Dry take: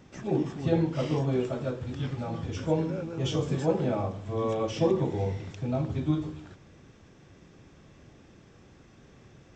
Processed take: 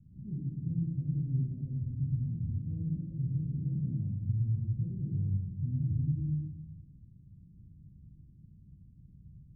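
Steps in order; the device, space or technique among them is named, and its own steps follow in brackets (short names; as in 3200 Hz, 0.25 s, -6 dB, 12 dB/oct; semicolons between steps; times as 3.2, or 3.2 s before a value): 4.21–4.81 graphic EQ 125/500/1000/2000 Hz +10/-12/+7/+10 dB; club heard from the street (limiter -22 dBFS, peak gain reduction 10 dB; LPF 170 Hz 24 dB/oct; reverb RT60 0.95 s, pre-delay 38 ms, DRR 0.5 dB)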